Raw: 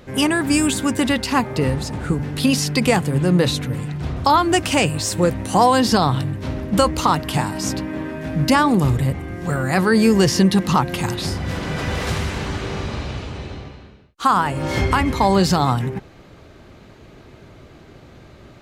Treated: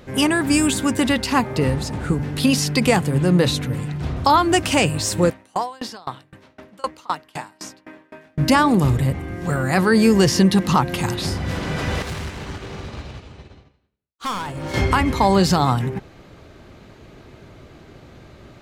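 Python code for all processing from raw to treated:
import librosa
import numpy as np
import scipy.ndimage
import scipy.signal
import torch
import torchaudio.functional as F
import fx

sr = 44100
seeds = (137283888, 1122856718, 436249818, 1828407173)

y = fx.chain(x, sr, fx.highpass(hz=760.0, slope=6),
    fx.high_shelf(hz=4700.0, db=-6.5),
    fx.tremolo_decay(direction='decaying', hz=3.9, depth_db=29), at=(5.3, 8.38))
y = fx.chain(y, sr, fx.overload_stage(gain_db=22.0),
    fx.upward_expand(threshold_db=-47.0, expansion=2.5), at=(12.02, 14.74))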